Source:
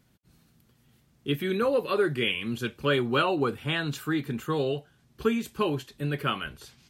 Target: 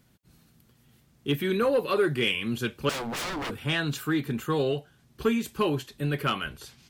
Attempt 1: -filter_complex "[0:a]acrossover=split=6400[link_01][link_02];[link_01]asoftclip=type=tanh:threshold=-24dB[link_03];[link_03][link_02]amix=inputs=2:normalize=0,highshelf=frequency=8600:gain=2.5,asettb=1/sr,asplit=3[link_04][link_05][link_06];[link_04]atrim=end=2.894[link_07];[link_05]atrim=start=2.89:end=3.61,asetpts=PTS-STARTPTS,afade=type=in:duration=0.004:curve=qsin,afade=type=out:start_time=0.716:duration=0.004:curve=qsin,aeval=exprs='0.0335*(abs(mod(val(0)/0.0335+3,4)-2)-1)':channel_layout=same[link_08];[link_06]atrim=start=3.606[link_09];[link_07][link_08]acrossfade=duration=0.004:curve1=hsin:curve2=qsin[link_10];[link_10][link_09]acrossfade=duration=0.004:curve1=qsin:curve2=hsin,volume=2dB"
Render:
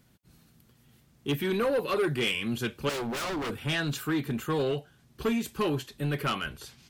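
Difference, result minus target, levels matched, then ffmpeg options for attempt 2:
soft clipping: distortion +9 dB
-filter_complex "[0:a]acrossover=split=6400[link_01][link_02];[link_01]asoftclip=type=tanh:threshold=-16.5dB[link_03];[link_03][link_02]amix=inputs=2:normalize=0,highshelf=frequency=8600:gain=2.5,asettb=1/sr,asplit=3[link_04][link_05][link_06];[link_04]atrim=end=2.894[link_07];[link_05]atrim=start=2.89:end=3.61,asetpts=PTS-STARTPTS,afade=type=in:duration=0.004:curve=qsin,afade=type=out:start_time=0.716:duration=0.004:curve=qsin,aeval=exprs='0.0335*(abs(mod(val(0)/0.0335+3,4)-2)-1)':channel_layout=same[link_08];[link_06]atrim=start=3.606[link_09];[link_07][link_08]acrossfade=duration=0.004:curve1=hsin:curve2=qsin[link_10];[link_10][link_09]acrossfade=duration=0.004:curve1=qsin:curve2=hsin,volume=2dB"

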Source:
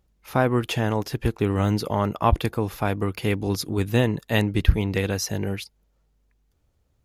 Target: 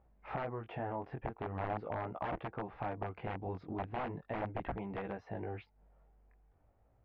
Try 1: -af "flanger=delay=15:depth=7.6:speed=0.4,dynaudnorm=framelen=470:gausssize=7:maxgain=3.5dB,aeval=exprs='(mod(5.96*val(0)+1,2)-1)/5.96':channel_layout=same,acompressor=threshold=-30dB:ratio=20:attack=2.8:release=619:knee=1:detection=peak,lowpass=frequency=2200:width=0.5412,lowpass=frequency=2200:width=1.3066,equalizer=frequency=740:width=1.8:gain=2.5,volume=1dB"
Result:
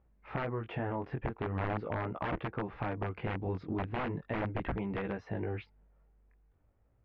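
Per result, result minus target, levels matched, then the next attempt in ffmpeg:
downward compressor: peak gain reduction −6.5 dB; 1,000 Hz band −3.5 dB
-af "flanger=delay=15:depth=7.6:speed=0.4,dynaudnorm=framelen=470:gausssize=7:maxgain=3.5dB,aeval=exprs='(mod(5.96*val(0)+1,2)-1)/5.96':channel_layout=same,acompressor=threshold=-37dB:ratio=20:attack=2.8:release=619:knee=1:detection=peak,lowpass=frequency=2200:width=0.5412,lowpass=frequency=2200:width=1.3066,equalizer=frequency=740:width=1.8:gain=2.5,volume=1dB"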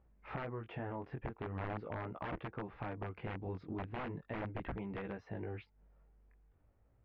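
1,000 Hz band −3.0 dB
-af "flanger=delay=15:depth=7.6:speed=0.4,dynaudnorm=framelen=470:gausssize=7:maxgain=3.5dB,aeval=exprs='(mod(5.96*val(0)+1,2)-1)/5.96':channel_layout=same,acompressor=threshold=-37dB:ratio=20:attack=2.8:release=619:knee=1:detection=peak,lowpass=frequency=2200:width=0.5412,lowpass=frequency=2200:width=1.3066,equalizer=frequency=740:width=1.8:gain=10.5,volume=1dB"

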